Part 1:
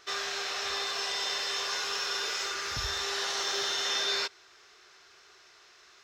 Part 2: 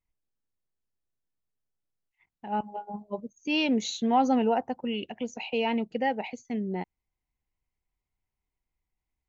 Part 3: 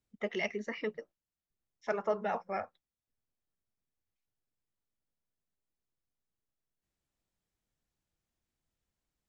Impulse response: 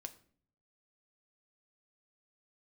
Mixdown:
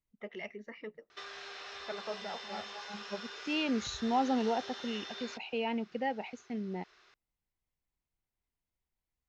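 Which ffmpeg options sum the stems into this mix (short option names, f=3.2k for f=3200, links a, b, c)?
-filter_complex "[0:a]lowpass=4.1k,acompressor=threshold=-38dB:ratio=6,adelay=1100,volume=-5dB[a];[1:a]volume=-6.5dB[b];[2:a]lowpass=4.1k,volume=-9dB,asplit=3[c][d][e];[d]volume=-17dB[f];[e]apad=whole_len=409485[g];[b][g]sidechaincompress=threshold=-50dB:ratio=8:attack=16:release=542[h];[3:a]atrim=start_sample=2205[i];[f][i]afir=irnorm=-1:irlink=0[j];[a][h][c][j]amix=inputs=4:normalize=0"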